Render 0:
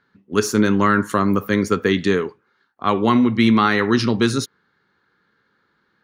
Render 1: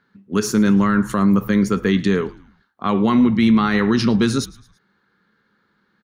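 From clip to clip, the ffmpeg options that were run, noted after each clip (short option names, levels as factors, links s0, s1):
-filter_complex "[0:a]equalizer=f=200:t=o:w=0.38:g=8.5,alimiter=limit=0.422:level=0:latency=1:release=52,asplit=4[s0][s1][s2][s3];[s1]adelay=110,afreqshift=-79,volume=0.0794[s4];[s2]adelay=220,afreqshift=-158,volume=0.0372[s5];[s3]adelay=330,afreqshift=-237,volume=0.0176[s6];[s0][s4][s5][s6]amix=inputs=4:normalize=0"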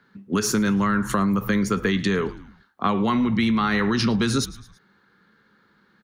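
-filter_complex "[0:a]acrossover=split=120|620|1600[s0][s1][s2][s3];[s1]alimiter=limit=0.158:level=0:latency=1:release=279[s4];[s0][s4][s2][s3]amix=inputs=4:normalize=0,acompressor=threshold=0.0794:ratio=6,volume=1.58"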